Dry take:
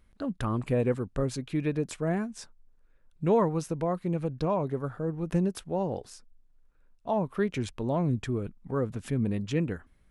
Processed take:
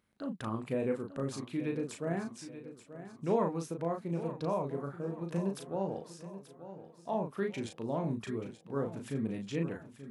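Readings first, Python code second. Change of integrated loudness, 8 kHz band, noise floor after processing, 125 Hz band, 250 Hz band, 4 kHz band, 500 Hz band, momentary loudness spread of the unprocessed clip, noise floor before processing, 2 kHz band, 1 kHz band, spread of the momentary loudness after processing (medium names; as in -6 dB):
-6.0 dB, -5.0 dB, -58 dBFS, -8.5 dB, -5.5 dB, -5.0 dB, -5.0 dB, 7 LU, -62 dBFS, -5.0 dB, -5.0 dB, 14 LU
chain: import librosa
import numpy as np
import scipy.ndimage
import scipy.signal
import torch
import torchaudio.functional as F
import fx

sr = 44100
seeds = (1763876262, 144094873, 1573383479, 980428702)

y = scipy.signal.sosfilt(scipy.signal.butter(2, 150.0, 'highpass', fs=sr, output='sos'), x)
y = fx.doubler(y, sr, ms=36.0, db=-4.5)
y = fx.echo_feedback(y, sr, ms=882, feedback_pct=44, wet_db=-13.0)
y = F.gain(torch.from_numpy(y), -6.5).numpy()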